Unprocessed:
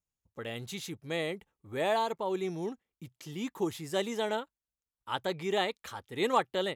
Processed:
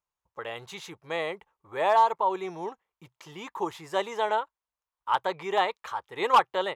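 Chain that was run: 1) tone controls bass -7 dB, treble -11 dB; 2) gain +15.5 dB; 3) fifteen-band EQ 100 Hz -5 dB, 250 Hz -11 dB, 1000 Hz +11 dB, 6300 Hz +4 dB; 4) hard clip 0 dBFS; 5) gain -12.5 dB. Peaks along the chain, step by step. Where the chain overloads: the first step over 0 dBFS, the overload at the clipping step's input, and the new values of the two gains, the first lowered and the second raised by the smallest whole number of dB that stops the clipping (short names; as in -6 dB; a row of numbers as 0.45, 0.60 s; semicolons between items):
-14.0, +1.5, +8.5, 0.0, -12.5 dBFS; step 2, 8.5 dB; step 2 +6.5 dB, step 5 -3.5 dB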